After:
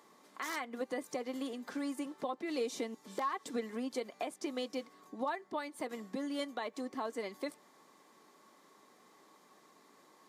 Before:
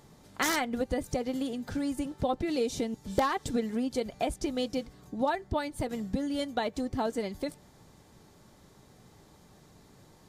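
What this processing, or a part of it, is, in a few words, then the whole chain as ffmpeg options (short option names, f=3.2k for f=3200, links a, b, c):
laptop speaker: -af "highpass=f=250:w=0.5412,highpass=f=250:w=1.3066,equalizer=f=1.1k:t=o:w=0.24:g=12,equalizer=f=2k:t=o:w=0.53:g=5,alimiter=limit=-21.5dB:level=0:latency=1:release=298,volume=-5dB"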